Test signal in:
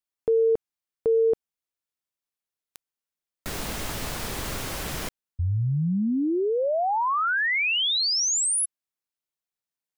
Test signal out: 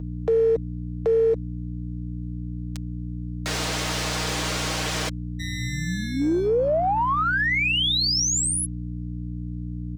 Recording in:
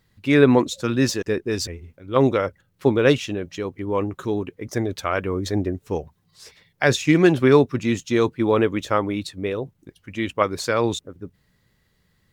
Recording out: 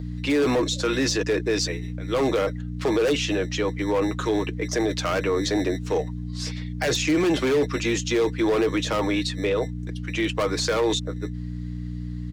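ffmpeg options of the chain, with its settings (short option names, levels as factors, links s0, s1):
-filter_complex "[0:a]acrossover=split=180|2600[s0][s1][s2];[s0]acrusher=samples=23:mix=1:aa=0.000001[s3];[s3][s1][s2]amix=inputs=3:normalize=0,acrossover=split=340 7400:gain=0.0891 1 0.0891[s4][s5][s6];[s4][s5][s6]amix=inputs=3:normalize=0,aeval=exprs='val(0)+0.0158*(sin(2*PI*60*n/s)+sin(2*PI*2*60*n/s)/2+sin(2*PI*3*60*n/s)/3+sin(2*PI*4*60*n/s)/4+sin(2*PI*5*60*n/s)/5)':c=same,asoftclip=type=hard:threshold=0.112,highshelf=f=3500:g=6.5,aeval=exprs='0.251*(cos(1*acos(clip(val(0)/0.251,-1,1)))-cos(1*PI/2))+0.00224*(cos(7*acos(clip(val(0)/0.251,-1,1)))-cos(7*PI/2))':c=same,aecho=1:1:6.4:0.46,acrossover=split=470[s7][s8];[s8]acompressor=threshold=0.0224:ratio=2.5:attack=0.38:release=59:knee=2.83:detection=peak[s9];[s7][s9]amix=inputs=2:normalize=0,highpass=f=41:p=1,acompressor=threshold=0.0447:ratio=3:attack=0.73:release=29:knee=1:detection=peak,volume=2.66"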